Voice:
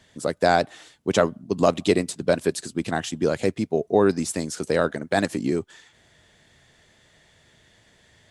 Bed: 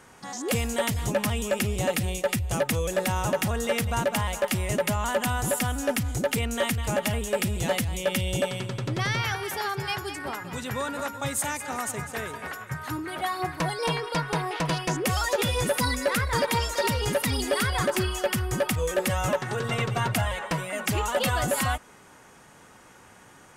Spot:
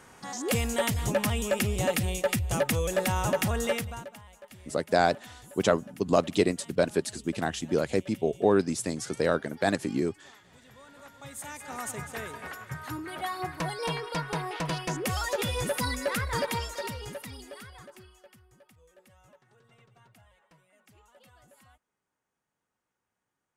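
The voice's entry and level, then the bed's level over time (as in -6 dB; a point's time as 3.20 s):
4.50 s, -4.0 dB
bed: 3.69 s -1 dB
4.21 s -23.5 dB
10.77 s -23.5 dB
11.87 s -4.5 dB
16.44 s -4.5 dB
18.57 s -33.5 dB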